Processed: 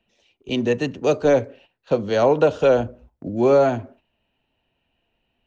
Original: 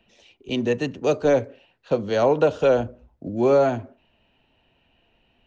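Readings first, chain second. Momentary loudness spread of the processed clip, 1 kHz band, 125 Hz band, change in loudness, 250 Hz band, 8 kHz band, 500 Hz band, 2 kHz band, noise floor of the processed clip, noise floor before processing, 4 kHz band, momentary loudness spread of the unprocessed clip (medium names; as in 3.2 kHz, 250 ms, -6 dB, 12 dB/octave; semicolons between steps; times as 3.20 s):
14 LU, +2.0 dB, +2.0 dB, +2.5 dB, +2.0 dB, no reading, +2.0 dB, +2.0 dB, -74 dBFS, -66 dBFS, +2.0 dB, 14 LU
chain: gate -50 dBFS, range -10 dB; trim +2 dB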